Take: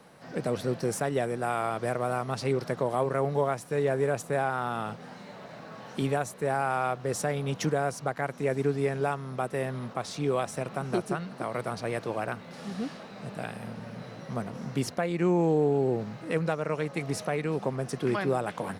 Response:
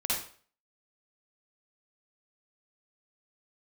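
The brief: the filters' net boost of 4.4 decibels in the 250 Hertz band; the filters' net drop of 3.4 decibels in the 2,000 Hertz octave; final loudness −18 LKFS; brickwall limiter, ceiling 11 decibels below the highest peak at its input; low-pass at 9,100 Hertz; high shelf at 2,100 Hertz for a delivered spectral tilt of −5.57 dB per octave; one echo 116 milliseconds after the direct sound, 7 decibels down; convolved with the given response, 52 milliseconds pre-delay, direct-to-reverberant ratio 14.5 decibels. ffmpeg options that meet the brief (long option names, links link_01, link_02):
-filter_complex "[0:a]lowpass=9100,equalizer=frequency=250:width_type=o:gain=6,equalizer=frequency=2000:width_type=o:gain=-8,highshelf=frequency=2100:gain=5.5,alimiter=level_in=0.5dB:limit=-24dB:level=0:latency=1,volume=-0.5dB,aecho=1:1:116:0.447,asplit=2[link_01][link_02];[1:a]atrim=start_sample=2205,adelay=52[link_03];[link_02][link_03]afir=irnorm=-1:irlink=0,volume=-21.5dB[link_04];[link_01][link_04]amix=inputs=2:normalize=0,volume=16dB"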